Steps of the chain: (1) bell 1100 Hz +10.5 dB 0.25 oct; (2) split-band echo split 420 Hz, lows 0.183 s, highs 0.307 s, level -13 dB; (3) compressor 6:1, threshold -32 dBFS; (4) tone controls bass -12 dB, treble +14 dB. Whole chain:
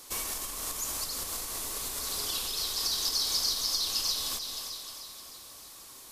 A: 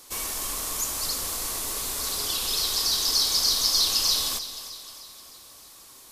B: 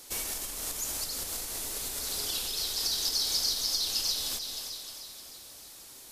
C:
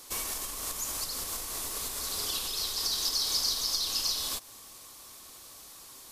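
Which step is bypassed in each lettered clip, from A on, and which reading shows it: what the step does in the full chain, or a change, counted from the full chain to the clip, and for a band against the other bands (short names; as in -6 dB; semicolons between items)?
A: 3, mean gain reduction 4.0 dB; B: 1, 1 kHz band -4.5 dB; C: 2, momentary loudness spread change +2 LU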